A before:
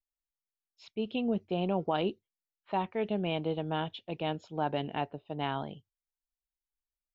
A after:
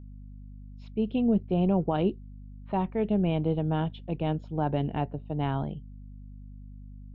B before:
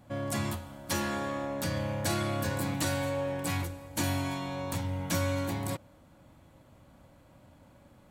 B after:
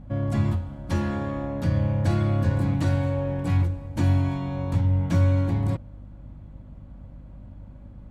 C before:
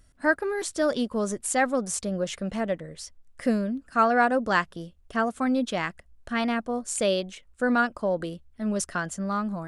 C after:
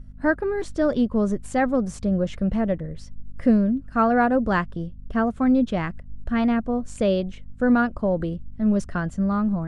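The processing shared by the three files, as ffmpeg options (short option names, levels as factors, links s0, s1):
-af "aemphasis=mode=reproduction:type=riaa,aeval=exprs='val(0)+0.00708*(sin(2*PI*50*n/s)+sin(2*PI*2*50*n/s)/2+sin(2*PI*3*50*n/s)/3+sin(2*PI*4*50*n/s)/4+sin(2*PI*5*50*n/s)/5)':c=same"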